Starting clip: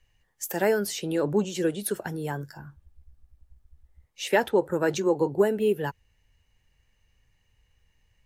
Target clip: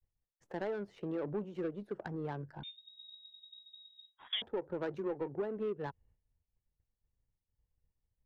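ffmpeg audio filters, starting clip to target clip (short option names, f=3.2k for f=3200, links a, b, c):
-filter_complex "[0:a]agate=range=-33dB:threshold=-55dB:ratio=3:detection=peak,lowshelf=f=360:g=-5,acompressor=threshold=-37dB:ratio=3,asoftclip=type=tanh:threshold=-28dB,adynamicsmooth=sensitivity=3.5:basefreq=650,asettb=1/sr,asplit=3[a][b][c];[a]atrim=end=2.634[d];[b]atrim=start=2.63:end=4.42,asetpts=PTS-STARTPTS,afade=t=in:d=0.004:c=qsin,afade=t=out:st=1.786:d=0.004:c=qsin,lowpass=f=3.2k:t=q:w=0.5098,lowpass=f=3.2k:t=q:w=0.6013,lowpass=f=3.2k:t=q:w=0.9,lowpass=f=3.2k:t=q:w=2.563,afreqshift=-3800[e];[c]atrim=start=4.416[f];[d][e]acrossfade=d=0.004:c1=hsin:c2=qsin[g];[g][f]acrossfade=d=0.004:c1=qsin:c2=hsin,volume=1.5dB"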